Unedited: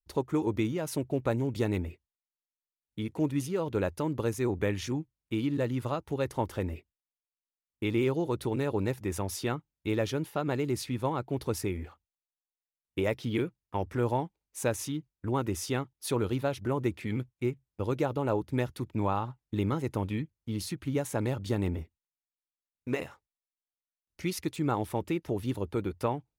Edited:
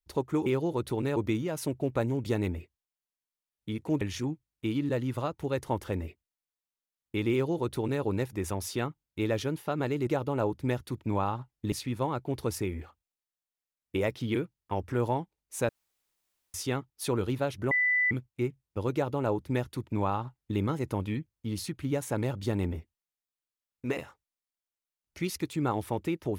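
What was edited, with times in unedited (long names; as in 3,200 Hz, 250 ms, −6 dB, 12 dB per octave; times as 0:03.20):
0:03.31–0:04.69: remove
0:08.00–0:08.70: duplicate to 0:00.46
0:14.72–0:15.57: fill with room tone
0:16.74–0:17.14: beep over 1,990 Hz −22.5 dBFS
0:17.96–0:19.61: duplicate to 0:10.75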